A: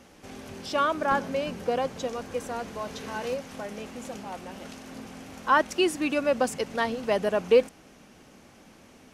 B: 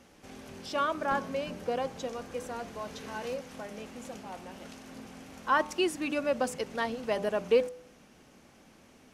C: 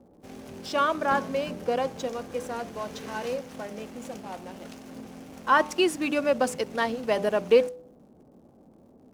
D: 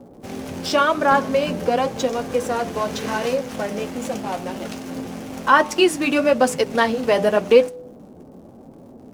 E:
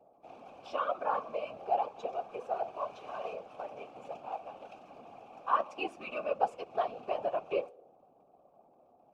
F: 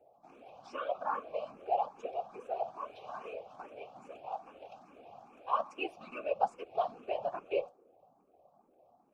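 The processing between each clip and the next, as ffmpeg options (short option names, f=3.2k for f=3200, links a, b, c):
-af "bandreject=f=99.76:t=h:w=4,bandreject=f=199.52:t=h:w=4,bandreject=f=299.28:t=h:w=4,bandreject=f=399.04:t=h:w=4,bandreject=f=498.8:t=h:w=4,bandreject=f=598.56:t=h:w=4,bandreject=f=698.32:t=h:w=4,bandreject=f=798.08:t=h:w=4,bandreject=f=897.84:t=h:w=4,bandreject=f=997.6:t=h:w=4,bandreject=f=1.09736k:t=h:w=4,bandreject=f=1.19712k:t=h:w=4,bandreject=f=1.29688k:t=h:w=4,volume=-4.5dB"
-filter_complex "[0:a]lowshelf=f=64:g=-9,acrossover=split=810[a][b];[b]aeval=exprs='sgn(val(0))*max(abs(val(0))-0.00141,0)':c=same[c];[a][c]amix=inputs=2:normalize=0,volume=5.5dB"
-filter_complex "[0:a]asplit=2[a][b];[b]acompressor=threshold=-32dB:ratio=6,volume=2.5dB[c];[a][c]amix=inputs=2:normalize=0,flanger=delay=7.1:depth=4.5:regen=-46:speed=0.91:shape=sinusoidal,volume=8.5dB"
-filter_complex "[0:a]asplit=3[a][b][c];[a]bandpass=f=730:t=q:w=8,volume=0dB[d];[b]bandpass=f=1.09k:t=q:w=8,volume=-6dB[e];[c]bandpass=f=2.44k:t=q:w=8,volume=-9dB[f];[d][e][f]amix=inputs=3:normalize=0,afftfilt=real='hypot(re,im)*cos(2*PI*random(0))':imag='hypot(re,im)*sin(2*PI*random(1))':win_size=512:overlap=0.75"
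-filter_complex "[0:a]asplit=2[a][b];[b]afreqshift=2.4[c];[a][c]amix=inputs=2:normalize=1"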